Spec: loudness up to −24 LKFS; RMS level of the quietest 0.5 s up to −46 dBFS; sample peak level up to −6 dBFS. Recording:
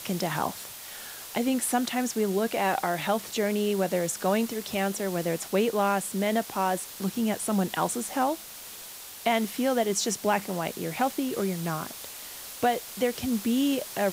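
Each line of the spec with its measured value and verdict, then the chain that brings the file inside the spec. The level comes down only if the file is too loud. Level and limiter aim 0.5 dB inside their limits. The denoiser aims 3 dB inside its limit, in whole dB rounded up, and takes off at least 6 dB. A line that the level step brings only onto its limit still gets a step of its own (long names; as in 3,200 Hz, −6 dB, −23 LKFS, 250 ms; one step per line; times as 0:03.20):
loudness −28.0 LKFS: in spec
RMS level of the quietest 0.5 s −43 dBFS: out of spec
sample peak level −10.5 dBFS: in spec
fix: broadband denoise 6 dB, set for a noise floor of −43 dBFS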